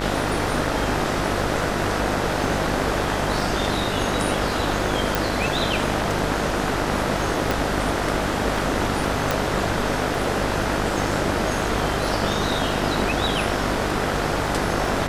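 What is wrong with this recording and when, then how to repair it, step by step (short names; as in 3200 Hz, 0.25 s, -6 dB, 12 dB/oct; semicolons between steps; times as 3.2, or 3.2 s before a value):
buzz 50 Hz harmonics 40 -28 dBFS
crackle 32/s -31 dBFS
5.15 pop
7.51 pop
9.31 pop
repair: de-click; de-hum 50 Hz, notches 40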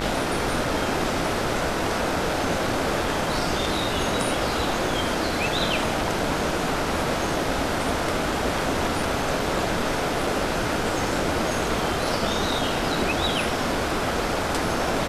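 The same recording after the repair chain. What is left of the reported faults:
none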